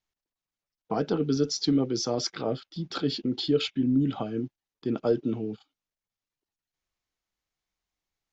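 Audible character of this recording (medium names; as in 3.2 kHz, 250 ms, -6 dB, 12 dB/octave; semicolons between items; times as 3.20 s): noise floor -93 dBFS; spectral tilt -5.5 dB/octave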